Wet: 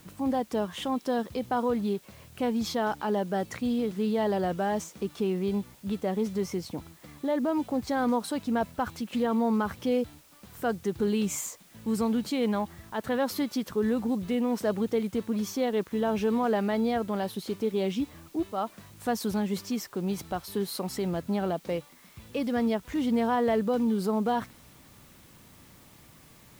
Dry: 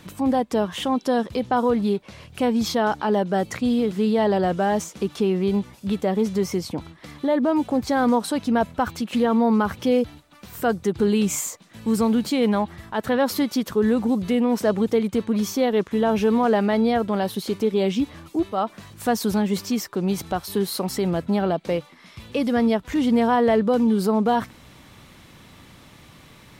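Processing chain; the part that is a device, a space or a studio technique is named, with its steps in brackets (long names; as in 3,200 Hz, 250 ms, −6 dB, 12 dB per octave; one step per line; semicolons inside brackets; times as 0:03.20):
plain cassette with noise reduction switched in (one half of a high-frequency compander decoder only; tape wow and flutter 12 cents; white noise bed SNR 29 dB)
level −7 dB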